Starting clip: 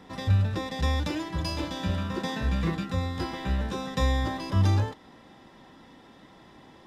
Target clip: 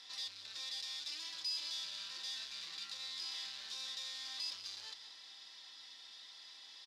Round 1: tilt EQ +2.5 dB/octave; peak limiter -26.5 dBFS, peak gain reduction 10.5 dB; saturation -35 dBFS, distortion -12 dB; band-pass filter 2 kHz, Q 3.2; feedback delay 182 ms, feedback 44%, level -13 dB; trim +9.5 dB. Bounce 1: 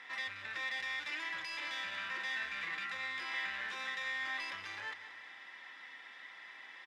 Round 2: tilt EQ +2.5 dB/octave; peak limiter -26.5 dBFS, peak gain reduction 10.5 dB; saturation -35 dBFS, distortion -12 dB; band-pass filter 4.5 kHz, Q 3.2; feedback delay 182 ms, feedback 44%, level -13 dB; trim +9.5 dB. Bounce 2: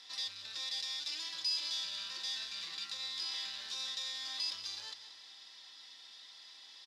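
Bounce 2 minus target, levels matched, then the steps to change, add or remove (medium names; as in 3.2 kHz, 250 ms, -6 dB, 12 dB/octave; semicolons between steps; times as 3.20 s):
saturation: distortion -5 dB
change: saturation -42 dBFS, distortion -7 dB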